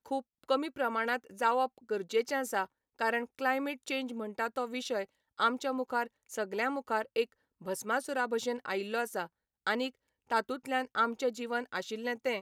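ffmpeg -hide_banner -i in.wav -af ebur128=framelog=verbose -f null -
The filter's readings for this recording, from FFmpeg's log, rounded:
Integrated loudness:
  I:         -33.6 LUFS
  Threshold: -43.7 LUFS
Loudness range:
  LRA:         1.9 LU
  Threshold: -53.9 LUFS
  LRA low:   -34.5 LUFS
  LRA high:  -32.6 LUFS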